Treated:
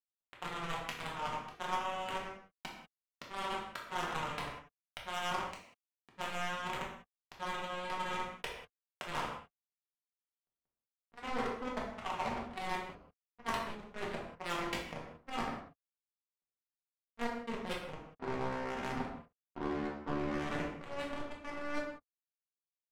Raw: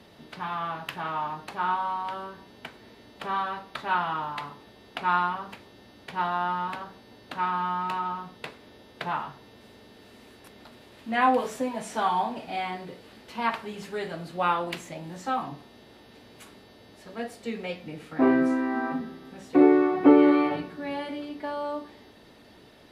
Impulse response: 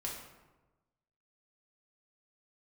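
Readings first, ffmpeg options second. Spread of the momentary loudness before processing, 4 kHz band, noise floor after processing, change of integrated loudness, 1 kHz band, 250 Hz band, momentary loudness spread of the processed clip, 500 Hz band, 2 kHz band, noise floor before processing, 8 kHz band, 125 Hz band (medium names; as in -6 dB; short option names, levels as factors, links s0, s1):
20 LU, -3.5 dB, under -85 dBFS, -12.5 dB, -11.5 dB, -17.0 dB, 12 LU, -13.0 dB, -7.5 dB, -53 dBFS, -2.5 dB, -5.5 dB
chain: -filter_complex "[0:a]areverse,acompressor=threshold=0.0224:ratio=16,areverse,acrusher=bits=4:mix=0:aa=0.5,aeval=exprs='0.133*(cos(1*acos(clip(val(0)/0.133,-1,1)))-cos(1*PI/2))+0.0335*(cos(2*acos(clip(val(0)/0.133,-1,1)))-cos(2*PI/2))':c=same,adynamicsmooth=sensitivity=8:basefreq=1000[s0];[1:a]atrim=start_sample=2205,afade=t=out:st=0.25:d=0.01,atrim=end_sample=11466[s1];[s0][s1]afir=irnorm=-1:irlink=0,volume=1.26"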